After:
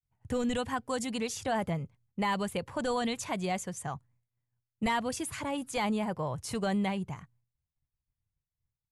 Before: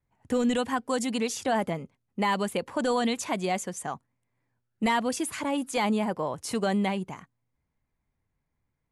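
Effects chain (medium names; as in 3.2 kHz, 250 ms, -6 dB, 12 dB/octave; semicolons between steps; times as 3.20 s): resonant low shelf 170 Hz +10.5 dB, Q 1.5; expander -57 dBFS; trim -4 dB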